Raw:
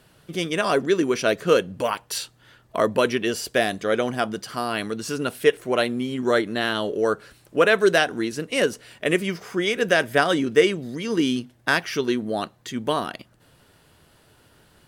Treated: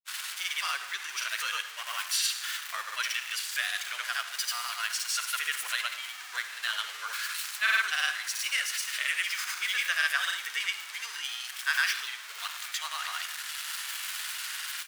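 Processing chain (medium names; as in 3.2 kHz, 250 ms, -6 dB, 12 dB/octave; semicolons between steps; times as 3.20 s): jump at every zero crossing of -24 dBFS; granulator, pitch spread up and down by 0 st; in parallel at -3 dB: peak limiter -16 dBFS, peak gain reduction 11 dB; on the sum: high-pass 1.4 kHz 24 dB/octave; on a send at -9.5 dB: reverberation RT60 0.80 s, pre-delay 50 ms; on the sum: harmony voices -5 st -16 dB; trim -6.5 dB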